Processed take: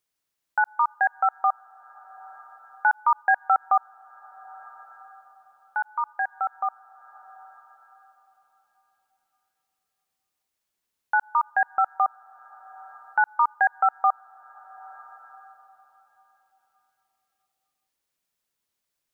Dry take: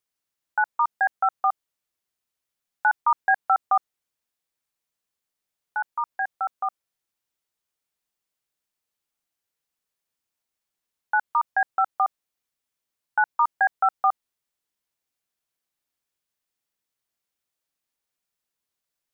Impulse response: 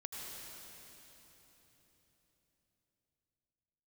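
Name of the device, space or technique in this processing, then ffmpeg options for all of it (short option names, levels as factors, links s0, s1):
ducked reverb: -filter_complex "[0:a]asplit=3[s0][s1][s2];[1:a]atrim=start_sample=2205[s3];[s1][s3]afir=irnorm=-1:irlink=0[s4];[s2]apad=whole_len=843900[s5];[s4][s5]sidechaincompress=threshold=0.01:ratio=8:attack=16:release=569,volume=0.596[s6];[s0][s6]amix=inputs=2:normalize=0"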